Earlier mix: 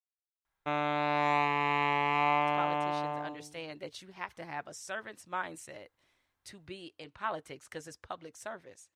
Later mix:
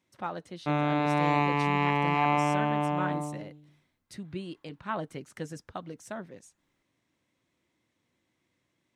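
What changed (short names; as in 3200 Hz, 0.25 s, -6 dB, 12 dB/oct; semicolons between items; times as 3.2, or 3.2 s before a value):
speech: entry -2.35 s; master: add bell 190 Hz +14.5 dB 1.6 oct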